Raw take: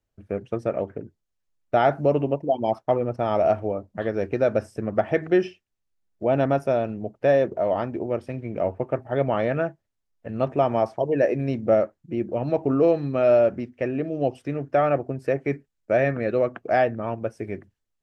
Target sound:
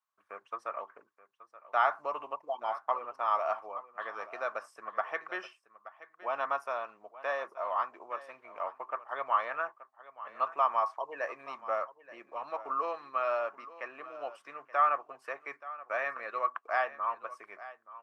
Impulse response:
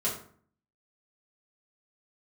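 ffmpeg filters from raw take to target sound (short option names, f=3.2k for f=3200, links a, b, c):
-filter_complex "[0:a]highpass=f=1.1k:t=q:w=9.9,asplit=2[a][b];[b]aecho=0:1:877:0.15[c];[a][c]amix=inputs=2:normalize=0,volume=-8.5dB"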